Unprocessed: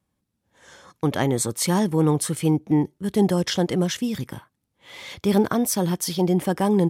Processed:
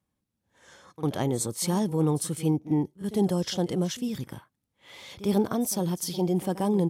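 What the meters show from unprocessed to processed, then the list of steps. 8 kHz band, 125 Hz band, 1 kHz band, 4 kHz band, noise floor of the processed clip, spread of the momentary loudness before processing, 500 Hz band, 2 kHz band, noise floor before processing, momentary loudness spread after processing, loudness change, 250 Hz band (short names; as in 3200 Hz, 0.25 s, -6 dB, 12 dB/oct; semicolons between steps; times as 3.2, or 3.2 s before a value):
-5.0 dB, -4.5 dB, -6.5 dB, -6.0 dB, -82 dBFS, 7 LU, -5.0 dB, -10.5 dB, -78 dBFS, 7 LU, -5.0 dB, -5.0 dB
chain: pre-echo 52 ms -16 dB; dynamic EQ 1800 Hz, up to -7 dB, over -44 dBFS, Q 1.3; gain -5 dB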